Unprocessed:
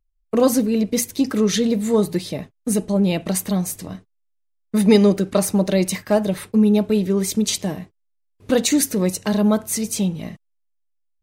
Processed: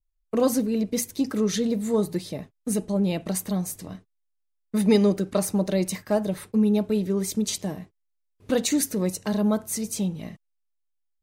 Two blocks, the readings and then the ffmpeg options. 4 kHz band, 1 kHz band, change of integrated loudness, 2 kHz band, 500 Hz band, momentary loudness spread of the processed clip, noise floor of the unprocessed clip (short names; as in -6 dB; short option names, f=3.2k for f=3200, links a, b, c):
-7.0 dB, -6.0 dB, -5.5 dB, -7.0 dB, -5.5 dB, 11 LU, -70 dBFS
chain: -af "adynamicequalizer=threshold=0.00891:dfrequency=2700:dqfactor=1.1:tfrequency=2700:tqfactor=1.1:attack=5:release=100:ratio=0.375:range=2:mode=cutabove:tftype=bell,volume=-5.5dB"